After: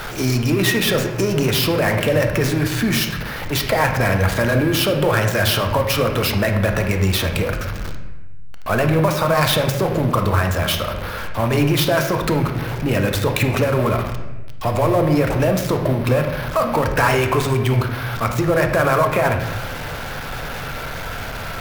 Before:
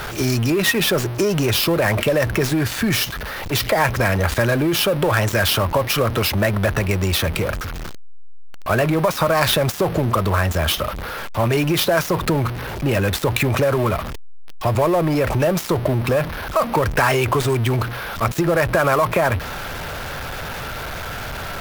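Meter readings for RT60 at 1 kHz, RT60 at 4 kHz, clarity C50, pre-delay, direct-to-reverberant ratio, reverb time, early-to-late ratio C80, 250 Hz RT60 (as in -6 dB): 0.95 s, 0.80 s, 6.5 dB, 4 ms, 4.0 dB, 1.1 s, 9.0 dB, 1.5 s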